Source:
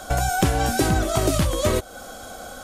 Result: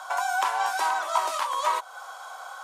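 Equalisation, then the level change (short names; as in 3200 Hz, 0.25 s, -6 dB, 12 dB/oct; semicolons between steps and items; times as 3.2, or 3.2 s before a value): ladder high-pass 920 Hz, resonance 80%; high shelf 7500 Hz -10 dB; +8.5 dB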